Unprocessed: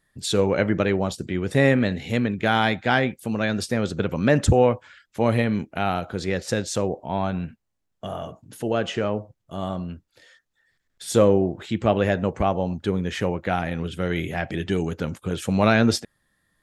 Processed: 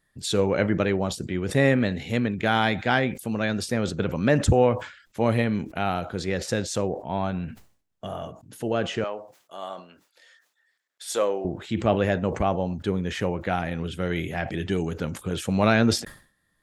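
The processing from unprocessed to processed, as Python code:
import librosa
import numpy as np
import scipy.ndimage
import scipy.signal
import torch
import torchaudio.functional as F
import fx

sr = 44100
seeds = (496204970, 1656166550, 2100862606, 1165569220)

y = fx.highpass(x, sr, hz=590.0, slope=12, at=(9.04, 11.45))
y = fx.sustainer(y, sr, db_per_s=120.0)
y = F.gain(torch.from_numpy(y), -2.0).numpy()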